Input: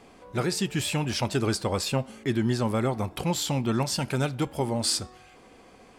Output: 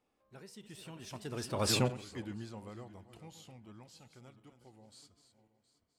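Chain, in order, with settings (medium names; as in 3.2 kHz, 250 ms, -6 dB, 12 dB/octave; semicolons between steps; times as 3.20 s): backward echo that repeats 335 ms, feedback 50%, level -10 dB; Doppler pass-by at 1.73 s, 25 m/s, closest 1.8 m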